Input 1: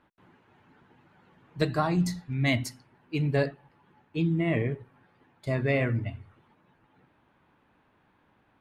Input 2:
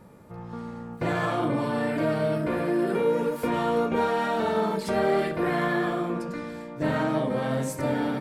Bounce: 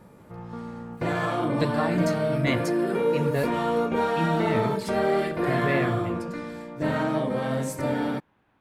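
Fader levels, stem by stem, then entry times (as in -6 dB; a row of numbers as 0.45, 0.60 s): -1.0, 0.0 dB; 0.00, 0.00 s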